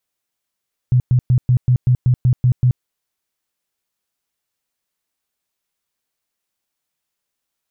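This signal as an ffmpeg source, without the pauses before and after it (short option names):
-f lavfi -i "aevalsrc='0.335*sin(2*PI*125*mod(t,0.19))*lt(mod(t,0.19),10/125)':d=1.9:s=44100"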